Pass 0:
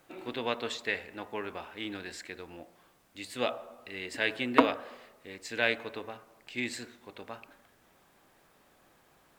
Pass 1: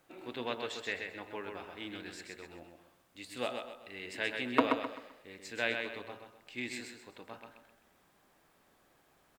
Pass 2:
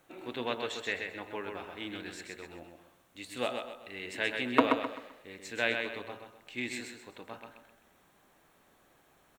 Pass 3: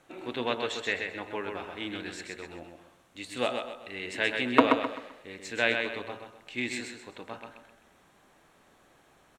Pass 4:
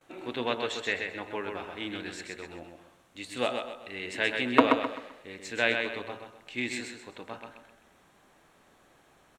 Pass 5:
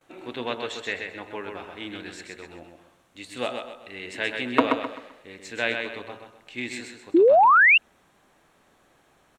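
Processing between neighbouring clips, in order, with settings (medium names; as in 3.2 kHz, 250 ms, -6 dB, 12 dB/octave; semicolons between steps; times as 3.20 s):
feedback delay 129 ms, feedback 34%, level -5 dB; trim -5.5 dB
band-stop 4.9 kHz, Q 7.8; trim +3 dB
low-pass 10 kHz 12 dB/octave; trim +4 dB
gate with hold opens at -54 dBFS
painted sound rise, 7.14–7.78 s, 310–2900 Hz -15 dBFS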